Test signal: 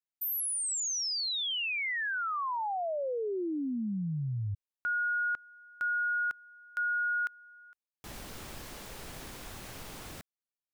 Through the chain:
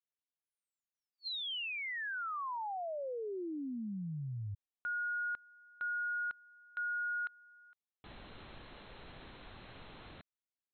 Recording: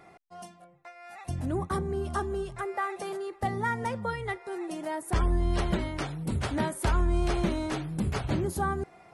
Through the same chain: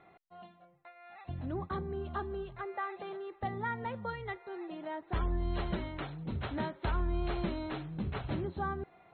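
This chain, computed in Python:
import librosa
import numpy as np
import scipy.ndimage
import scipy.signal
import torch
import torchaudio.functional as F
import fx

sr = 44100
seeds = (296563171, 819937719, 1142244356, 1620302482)

y = scipy.signal.sosfilt(scipy.signal.ellip(8, 1.0, 60, 4200.0, 'lowpass', fs=sr, output='sos'), x)
y = y * librosa.db_to_amplitude(-6.0)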